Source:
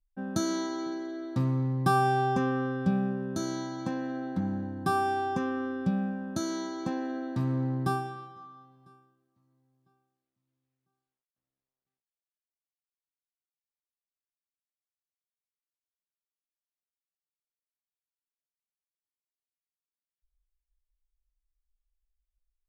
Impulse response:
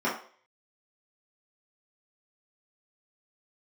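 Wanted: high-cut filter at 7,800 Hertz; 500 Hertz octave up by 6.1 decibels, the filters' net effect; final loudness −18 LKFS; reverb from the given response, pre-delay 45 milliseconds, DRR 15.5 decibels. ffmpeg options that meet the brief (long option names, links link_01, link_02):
-filter_complex "[0:a]lowpass=7800,equalizer=frequency=500:width_type=o:gain=8.5,asplit=2[link_01][link_02];[1:a]atrim=start_sample=2205,adelay=45[link_03];[link_02][link_03]afir=irnorm=-1:irlink=0,volume=-27.5dB[link_04];[link_01][link_04]amix=inputs=2:normalize=0,volume=9.5dB"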